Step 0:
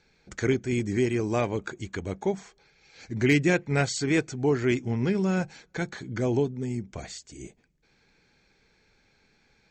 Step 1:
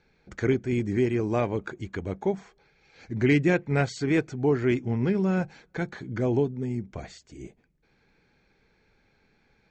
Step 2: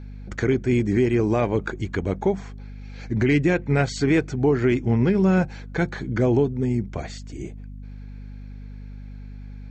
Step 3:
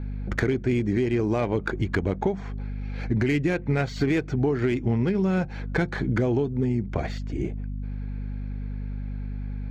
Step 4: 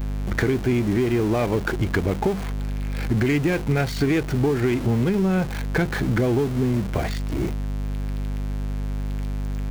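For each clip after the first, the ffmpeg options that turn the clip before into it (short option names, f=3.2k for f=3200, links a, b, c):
-af "aemphasis=mode=reproduction:type=75fm"
-af "alimiter=limit=-18dB:level=0:latency=1:release=155,acontrast=87,aeval=exprs='val(0)+0.0158*(sin(2*PI*50*n/s)+sin(2*PI*2*50*n/s)/2+sin(2*PI*3*50*n/s)/3+sin(2*PI*4*50*n/s)/4+sin(2*PI*5*50*n/s)/5)':c=same"
-filter_complex "[0:a]acrossover=split=3600[a][b];[a]acompressor=threshold=-27dB:ratio=6[c];[b]asoftclip=type=tanh:threshold=-39dB[d];[c][d]amix=inputs=2:normalize=0,adynamicsmooth=sensitivity=5:basefreq=2.8k,volume=6dB"
-af "aeval=exprs='val(0)+0.5*0.0376*sgn(val(0))':c=same,volume=1dB"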